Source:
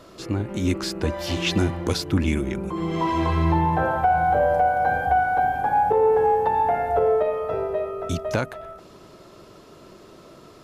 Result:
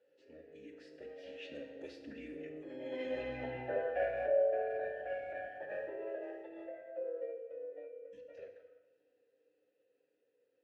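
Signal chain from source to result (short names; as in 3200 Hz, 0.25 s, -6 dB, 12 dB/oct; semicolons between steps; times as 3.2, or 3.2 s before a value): Doppler pass-by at 3.4, 10 m/s, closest 6.1 m; formant-preserving pitch shift -4.5 st; vowel filter e; FDN reverb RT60 1.1 s, low-frequency decay 1×, high-frequency decay 0.95×, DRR 4 dB; gain -1 dB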